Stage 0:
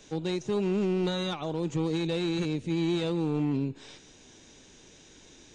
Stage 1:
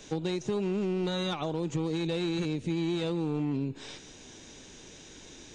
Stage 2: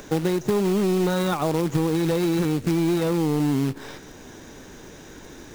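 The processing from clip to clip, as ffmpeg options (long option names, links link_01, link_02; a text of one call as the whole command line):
ffmpeg -i in.wav -af "acompressor=threshold=-32dB:ratio=6,volume=4.5dB" out.wav
ffmpeg -i in.wav -af "highshelf=frequency=2100:width_type=q:width=1.5:gain=-7.5,acrusher=bits=3:mode=log:mix=0:aa=0.000001,acompressor=mode=upward:threshold=-49dB:ratio=2.5,volume=8.5dB" out.wav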